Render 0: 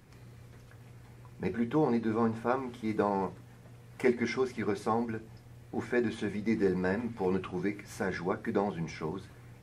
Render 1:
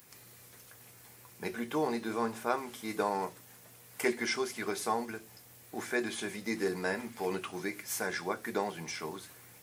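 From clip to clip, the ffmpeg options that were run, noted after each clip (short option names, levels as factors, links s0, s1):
-af "aemphasis=mode=production:type=riaa"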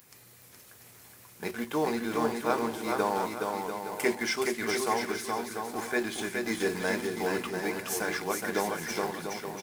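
-filter_complex "[0:a]asplit=2[s0][s1];[s1]acrusher=bits=5:mix=0:aa=0.000001,volume=0.335[s2];[s0][s2]amix=inputs=2:normalize=0,aecho=1:1:420|693|870.4|985.8|1061:0.631|0.398|0.251|0.158|0.1"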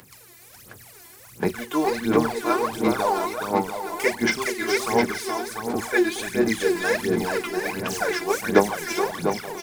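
-filter_complex "[0:a]aphaser=in_gain=1:out_gain=1:delay=3:decay=0.77:speed=1.4:type=sinusoidal,acrossover=split=180|6900[s0][s1][s2];[s2]aeval=exprs='0.015*(abs(mod(val(0)/0.015+3,4)-2)-1)':c=same[s3];[s0][s1][s3]amix=inputs=3:normalize=0,volume=1.33"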